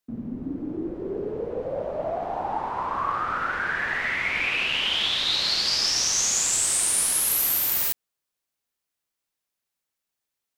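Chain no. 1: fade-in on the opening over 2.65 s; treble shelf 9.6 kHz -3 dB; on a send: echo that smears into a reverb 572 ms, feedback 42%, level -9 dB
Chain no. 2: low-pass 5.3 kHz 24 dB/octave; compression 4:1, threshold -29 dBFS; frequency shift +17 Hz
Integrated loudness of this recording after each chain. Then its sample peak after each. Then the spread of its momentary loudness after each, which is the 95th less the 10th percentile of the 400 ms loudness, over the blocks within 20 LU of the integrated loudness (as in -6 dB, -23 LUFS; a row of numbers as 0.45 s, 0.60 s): -23.0 LUFS, -31.0 LUFS; -11.0 dBFS, -19.0 dBFS; 18 LU, 6 LU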